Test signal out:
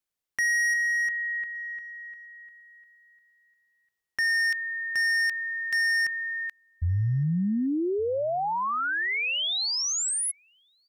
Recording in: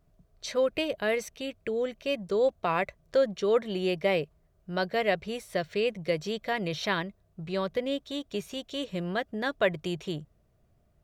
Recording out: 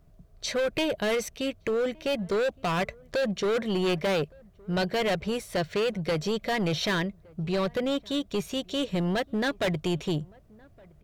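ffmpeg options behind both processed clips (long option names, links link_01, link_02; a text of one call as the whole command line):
ffmpeg -i in.wav -filter_complex "[0:a]acrossover=split=3500[link_01][link_02];[link_01]asoftclip=type=hard:threshold=-29.5dB[link_03];[link_03][link_02]amix=inputs=2:normalize=0,lowshelf=frequency=250:gain=4,asplit=2[link_04][link_05];[link_05]adelay=1166,volume=-26dB,highshelf=frequency=4000:gain=-26.2[link_06];[link_04][link_06]amix=inputs=2:normalize=0,volume=5dB" out.wav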